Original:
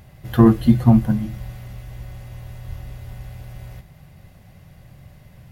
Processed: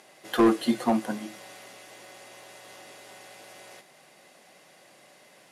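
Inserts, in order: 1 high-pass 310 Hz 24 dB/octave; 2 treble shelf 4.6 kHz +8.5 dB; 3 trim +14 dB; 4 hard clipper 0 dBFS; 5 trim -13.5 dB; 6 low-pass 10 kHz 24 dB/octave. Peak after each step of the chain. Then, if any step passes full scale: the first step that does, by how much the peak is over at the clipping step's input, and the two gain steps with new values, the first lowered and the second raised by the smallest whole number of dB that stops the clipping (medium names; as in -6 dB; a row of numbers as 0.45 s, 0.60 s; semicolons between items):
-6.0 dBFS, -6.0 dBFS, +8.0 dBFS, 0.0 dBFS, -13.5 dBFS, -13.0 dBFS; step 3, 8.0 dB; step 3 +6 dB, step 5 -5.5 dB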